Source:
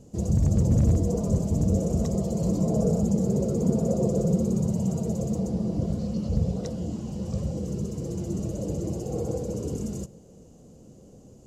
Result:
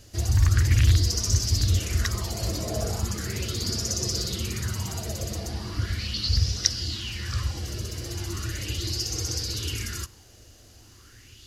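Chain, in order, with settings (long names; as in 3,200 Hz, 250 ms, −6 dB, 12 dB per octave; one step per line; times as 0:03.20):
drawn EQ curve 110 Hz 0 dB, 160 Hz −23 dB, 340 Hz −8 dB, 510 Hz −21 dB, 880 Hz −9 dB, 1,700 Hz +15 dB, 2,500 Hz +11 dB, 4,800 Hz +14 dB, 7,400 Hz 0 dB, 11,000 Hz +11 dB
auto-filter bell 0.38 Hz 590–5,800 Hz +13 dB
level +4 dB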